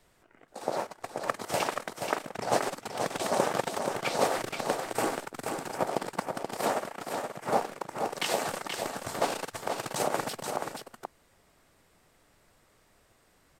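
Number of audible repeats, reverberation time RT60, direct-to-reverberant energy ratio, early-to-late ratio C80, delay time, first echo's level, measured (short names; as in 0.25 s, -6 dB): 1, none, none, none, 0.479 s, -5.5 dB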